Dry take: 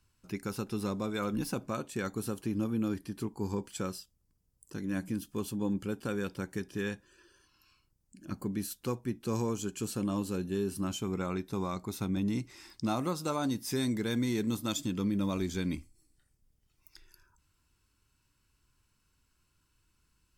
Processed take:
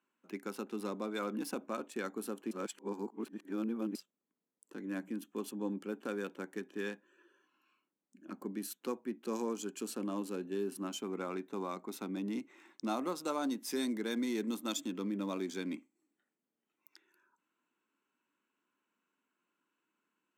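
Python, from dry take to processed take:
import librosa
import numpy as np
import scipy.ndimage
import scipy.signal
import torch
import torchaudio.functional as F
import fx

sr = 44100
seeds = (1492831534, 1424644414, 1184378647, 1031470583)

y = fx.edit(x, sr, fx.reverse_span(start_s=2.51, length_s=1.44), tone=tone)
y = fx.wiener(y, sr, points=9)
y = scipy.signal.sosfilt(scipy.signal.butter(6, 220.0, 'highpass', fs=sr, output='sos'), y)
y = y * 10.0 ** (-2.5 / 20.0)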